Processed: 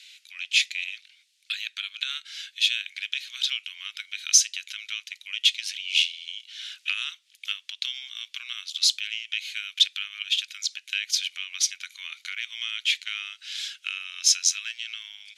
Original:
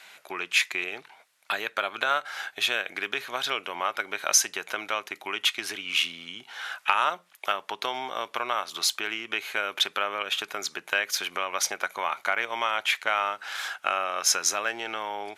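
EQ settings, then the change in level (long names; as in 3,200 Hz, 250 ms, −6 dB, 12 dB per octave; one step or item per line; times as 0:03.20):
inverse Chebyshev high-pass filter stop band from 660 Hz, stop band 70 dB
high-frequency loss of the air 71 metres
+8.0 dB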